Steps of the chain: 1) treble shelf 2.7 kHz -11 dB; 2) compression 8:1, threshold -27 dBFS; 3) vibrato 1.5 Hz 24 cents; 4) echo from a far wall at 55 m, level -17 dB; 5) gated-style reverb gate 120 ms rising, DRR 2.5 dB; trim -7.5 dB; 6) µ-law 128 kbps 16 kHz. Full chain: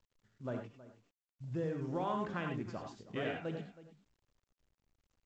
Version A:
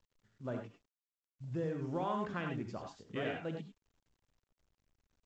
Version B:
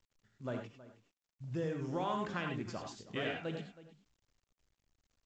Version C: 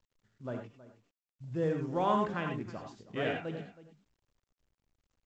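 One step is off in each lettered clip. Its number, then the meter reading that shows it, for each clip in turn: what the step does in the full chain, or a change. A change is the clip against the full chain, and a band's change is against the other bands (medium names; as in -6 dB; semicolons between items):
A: 4, momentary loudness spread change -3 LU; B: 1, 4 kHz band +5.5 dB; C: 2, mean gain reduction 2.5 dB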